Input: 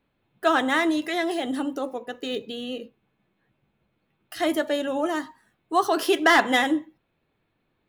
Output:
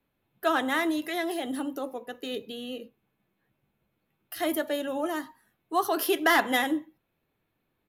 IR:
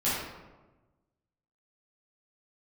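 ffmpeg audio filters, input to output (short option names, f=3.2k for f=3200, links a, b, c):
-filter_complex "[0:a]acrossover=split=220|1300[a][b][c];[c]aexciter=amount=6.7:drive=3.7:freq=11k[d];[a][b][d]amix=inputs=3:normalize=0,aresample=32000,aresample=44100,volume=-4.5dB"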